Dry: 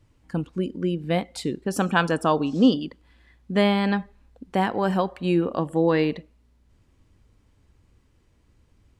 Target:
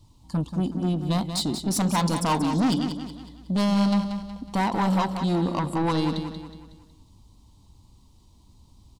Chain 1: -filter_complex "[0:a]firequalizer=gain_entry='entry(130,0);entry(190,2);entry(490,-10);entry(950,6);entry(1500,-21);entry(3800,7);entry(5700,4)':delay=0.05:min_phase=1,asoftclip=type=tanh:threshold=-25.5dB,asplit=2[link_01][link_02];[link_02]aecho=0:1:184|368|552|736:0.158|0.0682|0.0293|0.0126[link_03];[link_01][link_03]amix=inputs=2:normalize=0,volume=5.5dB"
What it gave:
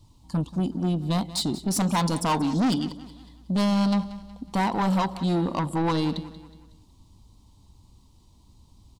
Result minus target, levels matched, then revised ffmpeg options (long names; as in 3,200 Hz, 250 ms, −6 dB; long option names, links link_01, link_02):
echo-to-direct −7.5 dB
-filter_complex "[0:a]firequalizer=gain_entry='entry(130,0);entry(190,2);entry(490,-10);entry(950,6);entry(1500,-21);entry(3800,7);entry(5700,4)':delay=0.05:min_phase=1,asoftclip=type=tanh:threshold=-25.5dB,asplit=2[link_01][link_02];[link_02]aecho=0:1:184|368|552|736|920:0.376|0.162|0.0695|0.0299|0.0128[link_03];[link_01][link_03]amix=inputs=2:normalize=0,volume=5.5dB"